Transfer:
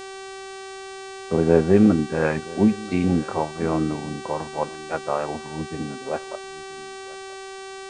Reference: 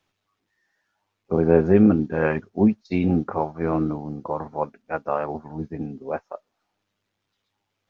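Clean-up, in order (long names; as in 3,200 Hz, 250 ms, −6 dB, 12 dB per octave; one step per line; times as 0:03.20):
hum removal 385.6 Hz, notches 24
downward expander −29 dBFS, range −21 dB
echo removal 981 ms −21.5 dB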